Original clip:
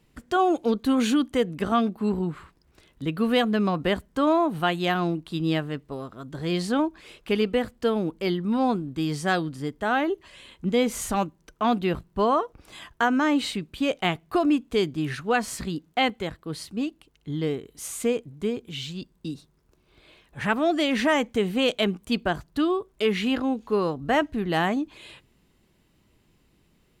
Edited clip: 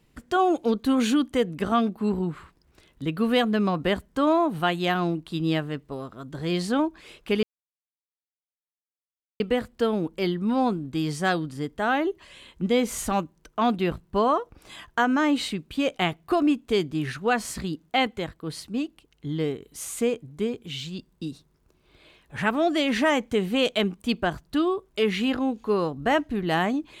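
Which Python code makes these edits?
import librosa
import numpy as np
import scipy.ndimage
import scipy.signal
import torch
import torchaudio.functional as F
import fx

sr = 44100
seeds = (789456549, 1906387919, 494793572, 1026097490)

y = fx.edit(x, sr, fx.insert_silence(at_s=7.43, length_s=1.97), tone=tone)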